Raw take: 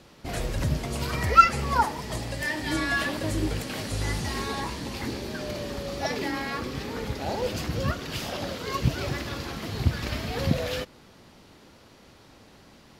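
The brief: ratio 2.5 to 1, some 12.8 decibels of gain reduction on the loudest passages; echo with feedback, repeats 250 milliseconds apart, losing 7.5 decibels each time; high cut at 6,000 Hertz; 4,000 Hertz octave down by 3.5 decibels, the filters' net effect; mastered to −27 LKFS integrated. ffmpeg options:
ffmpeg -i in.wav -af "lowpass=6000,equalizer=frequency=4000:width_type=o:gain=-3.5,acompressor=threshold=-29dB:ratio=2.5,aecho=1:1:250|500|750|1000|1250:0.422|0.177|0.0744|0.0312|0.0131,volume=5dB" out.wav

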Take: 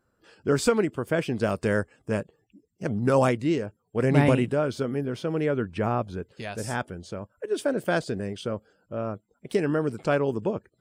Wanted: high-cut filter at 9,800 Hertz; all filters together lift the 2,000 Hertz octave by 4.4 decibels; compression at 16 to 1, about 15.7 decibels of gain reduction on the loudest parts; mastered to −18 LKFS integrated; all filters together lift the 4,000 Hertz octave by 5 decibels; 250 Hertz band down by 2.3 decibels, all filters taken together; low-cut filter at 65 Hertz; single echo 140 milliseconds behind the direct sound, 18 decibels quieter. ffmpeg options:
ffmpeg -i in.wav -af "highpass=65,lowpass=9800,equalizer=frequency=250:width_type=o:gain=-3,equalizer=frequency=2000:width_type=o:gain=5,equalizer=frequency=4000:width_type=o:gain=5,acompressor=threshold=-31dB:ratio=16,aecho=1:1:140:0.126,volume=19dB" out.wav

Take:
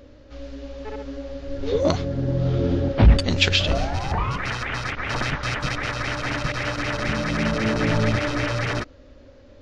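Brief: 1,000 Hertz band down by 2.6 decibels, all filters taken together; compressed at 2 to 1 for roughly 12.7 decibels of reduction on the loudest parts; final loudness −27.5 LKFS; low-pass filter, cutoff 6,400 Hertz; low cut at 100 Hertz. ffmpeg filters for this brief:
ffmpeg -i in.wav -af "highpass=100,lowpass=6400,equalizer=frequency=1000:width_type=o:gain=-3.5,acompressor=threshold=-38dB:ratio=2,volume=7dB" out.wav

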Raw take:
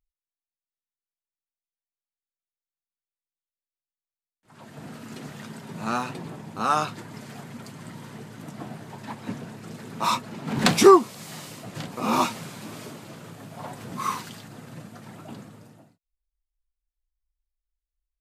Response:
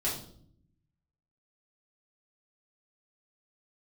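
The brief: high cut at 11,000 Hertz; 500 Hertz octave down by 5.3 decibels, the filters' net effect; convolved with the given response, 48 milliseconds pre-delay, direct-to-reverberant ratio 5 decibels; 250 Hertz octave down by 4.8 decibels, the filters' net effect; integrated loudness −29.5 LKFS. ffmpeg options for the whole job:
-filter_complex "[0:a]lowpass=11000,equalizer=frequency=250:width_type=o:gain=-4.5,equalizer=frequency=500:width_type=o:gain=-5.5,asplit=2[link_01][link_02];[1:a]atrim=start_sample=2205,adelay=48[link_03];[link_02][link_03]afir=irnorm=-1:irlink=0,volume=-11dB[link_04];[link_01][link_04]amix=inputs=2:normalize=0,volume=-4dB"

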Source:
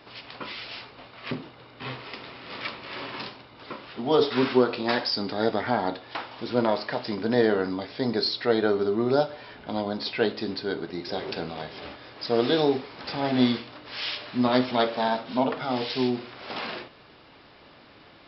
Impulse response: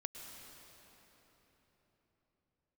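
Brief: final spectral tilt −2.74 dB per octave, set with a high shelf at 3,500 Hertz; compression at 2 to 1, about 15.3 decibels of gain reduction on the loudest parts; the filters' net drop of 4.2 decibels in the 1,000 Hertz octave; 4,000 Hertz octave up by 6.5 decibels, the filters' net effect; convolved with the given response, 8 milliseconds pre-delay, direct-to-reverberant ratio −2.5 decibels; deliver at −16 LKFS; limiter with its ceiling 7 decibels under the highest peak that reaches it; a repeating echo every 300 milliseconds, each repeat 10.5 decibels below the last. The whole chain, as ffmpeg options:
-filter_complex "[0:a]equalizer=frequency=1000:width_type=o:gain=-6.5,highshelf=frequency=3500:gain=3,equalizer=frequency=4000:width_type=o:gain=6,acompressor=threshold=-45dB:ratio=2,alimiter=level_in=4.5dB:limit=-24dB:level=0:latency=1,volume=-4.5dB,aecho=1:1:300|600|900:0.299|0.0896|0.0269,asplit=2[link_01][link_02];[1:a]atrim=start_sample=2205,adelay=8[link_03];[link_02][link_03]afir=irnorm=-1:irlink=0,volume=4.5dB[link_04];[link_01][link_04]amix=inputs=2:normalize=0,volume=19.5dB"

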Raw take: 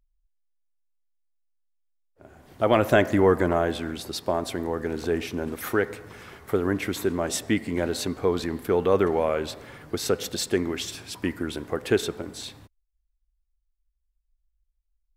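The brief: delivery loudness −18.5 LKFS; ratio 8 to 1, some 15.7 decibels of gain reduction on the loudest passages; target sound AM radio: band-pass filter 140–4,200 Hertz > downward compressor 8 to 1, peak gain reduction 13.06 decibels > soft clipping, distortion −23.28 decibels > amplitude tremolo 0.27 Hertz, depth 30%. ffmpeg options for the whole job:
ffmpeg -i in.wav -af "acompressor=threshold=-31dB:ratio=8,highpass=140,lowpass=4200,acompressor=threshold=-41dB:ratio=8,asoftclip=threshold=-30dB,tremolo=f=0.27:d=0.3,volume=29dB" out.wav

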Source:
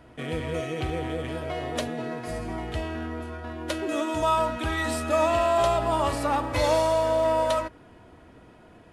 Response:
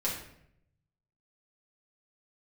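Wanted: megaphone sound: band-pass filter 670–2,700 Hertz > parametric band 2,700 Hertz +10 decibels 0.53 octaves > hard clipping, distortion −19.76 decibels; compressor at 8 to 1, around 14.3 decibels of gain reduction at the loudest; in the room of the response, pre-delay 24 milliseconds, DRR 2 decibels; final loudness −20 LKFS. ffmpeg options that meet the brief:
-filter_complex "[0:a]acompressor=threshold=-34dB:ratio=8,asplit=2[link_01][link_02];[1:a]atrim=start_sample=2205,adelay=24[link_03];[link_02][link_03]afir=irnorm=-1:irlink=0,volume=-8dB[link_04];[link_01][link_04]amix=inputs=2:normalize=0,highpass=670,lowpass=2700,equalizer=frequency=2700:width_type=o:width=0.53:gain=10,asoftclip=type=hard:threshold=-31.5dB,volume=18.5dB"

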